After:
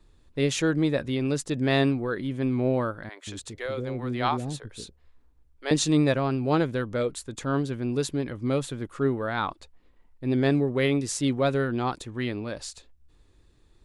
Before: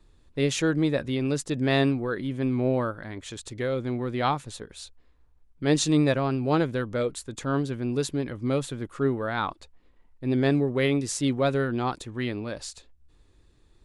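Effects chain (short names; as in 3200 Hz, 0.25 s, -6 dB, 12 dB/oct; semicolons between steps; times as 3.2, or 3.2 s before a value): 3.09–5.71 bands offset in time highs, lows 0.18 s, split 450 Hz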